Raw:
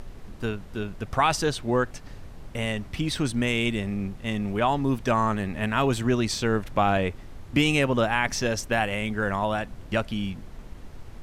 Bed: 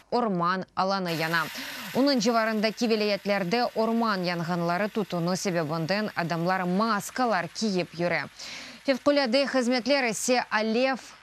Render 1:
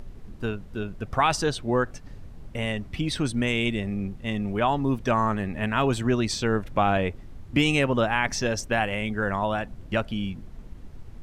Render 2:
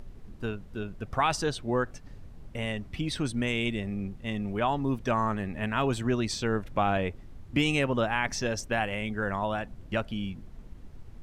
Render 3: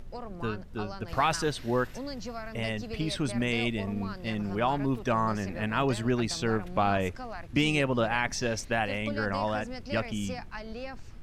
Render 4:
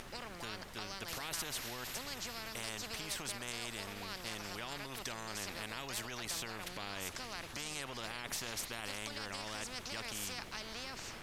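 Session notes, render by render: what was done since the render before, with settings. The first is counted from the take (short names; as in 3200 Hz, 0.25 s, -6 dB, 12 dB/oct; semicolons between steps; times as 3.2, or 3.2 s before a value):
denoiser 7 dB, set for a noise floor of -43 dBFS
gain -4 dB
add bed -15.5 dB
limiter -24.5 dBFS, peak gain reduction 11 dB; spectral compressor 4:1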